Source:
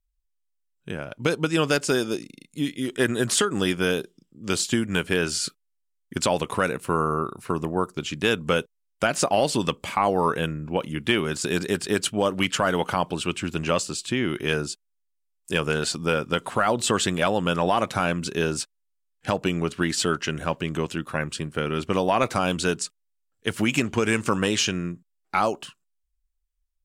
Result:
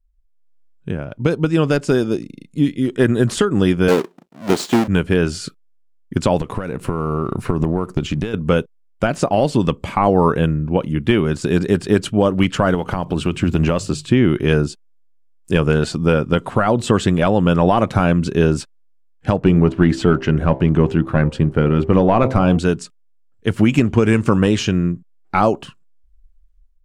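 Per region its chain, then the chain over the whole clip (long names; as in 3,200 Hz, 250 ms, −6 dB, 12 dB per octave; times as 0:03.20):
0:03.88–0:04.88: each half-wave held at its own peak + high-pass filter 300 Hz
0:06.40–0:08.34: downward compressor 12 to 1, threshold −31 dBFS + leveller curve on the samples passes 1
0:12.74–0:14.06: one scale factor per block 7 bits + mains-hum notches 50/100/150 Hz + downward compressor, threshold −24 dBFS
0:19.39–0:22.59: hum removal 65.81 Hz, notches 15 + leveller curve on the samples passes 1 + high-shelf EQ 4,200 Hz −11.5 dB
whole clip: spectral tilt −3 dB per octave; automatic gain control; level −1 dB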